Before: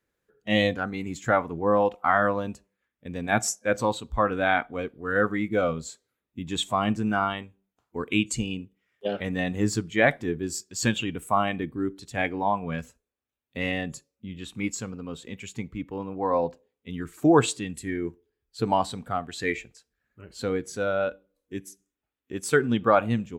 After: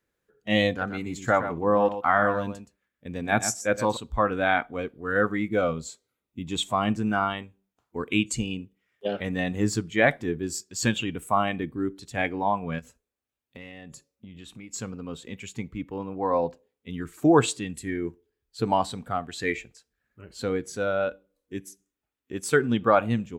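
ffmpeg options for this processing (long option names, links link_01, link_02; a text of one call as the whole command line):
ffmpeg -i in.wav -filter_complex "[0:a]asettb=1/sr,asplit=3[link_01][link_02][link_03];[link_01]atrim=end=0.694[link_04];[link_02]atrim=start=0.69:end=3.97,asetpts=PTS-STARTPTS,afade=type=in:duration=0.004:curve=qsin,afade=type=out:start_time=3.276:duration=0.004:curve=qsin,aecho=1:1:121:0.299,atrim=end_sample=144648[link_05];[link_03]atrim=start=3.966[link_06];[link_04][link_05]acrossfade=duration=0.004:curve1=hsin:curve2=qsin[link_07];[link_07][link_06]acrossfade=duration=0.004:curve1=qsin:curve2=hsin,asettb=1/sr,asplit=3[link_08][link_09][link_10];[link_08]atrim=end=5.744[link_11];[link_09]atrim=start=5.74:end=6.65,asetpts=PTS-STARTPTS,afade=type=in:duration=0.004:curve=qsin,afade=type=out:start_time=0.906:duration=0.004:curve=qsin,bandreject=frequency=1700:width=5.6[link_12];[link_10]atrim=start=6.646[link_13];[link_11][link_12]acrossfade=duration=0.004:curve1=hsin:curve2=qsin[link_14];[link_14][link_13]acrossfade=duration=0.004:curve1=qsin:curve2=hsin,asplit=3[link_15][link_16][link_17];[link_15]afade=type=out:start_time=12.78:duration=0.02[link_18];[link_16]acompressor=threshold=-40dB:ratio=6:attack=3.2:release=140:knee=1:detection=peak,afade=type=in:start_time=12.78:duration=0.02,afade=type=out:start_time=14.73:duration=0.02[link_19];[link_17]afade=type=in:start_time=14.73:duration=0.02[link_20];[link_18][link_19][link_20]amix=inputs=3:normalize=0" out.wav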